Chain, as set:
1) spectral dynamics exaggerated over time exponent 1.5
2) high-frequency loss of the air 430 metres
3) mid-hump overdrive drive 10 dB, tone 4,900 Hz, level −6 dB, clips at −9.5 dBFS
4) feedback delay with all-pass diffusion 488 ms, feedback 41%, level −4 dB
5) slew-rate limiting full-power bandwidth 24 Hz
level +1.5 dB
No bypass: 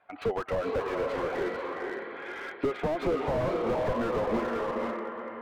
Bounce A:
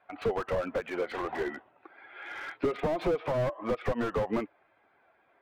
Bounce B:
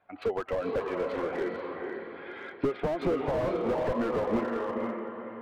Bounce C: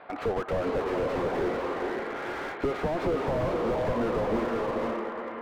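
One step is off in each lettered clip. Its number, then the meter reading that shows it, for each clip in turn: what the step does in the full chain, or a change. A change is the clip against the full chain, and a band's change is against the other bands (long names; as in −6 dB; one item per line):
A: 4, 125 Hz band +1.5 dB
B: 3, change in crest factor +2.0 dB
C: 1, change in momentary loudness spread −2 LU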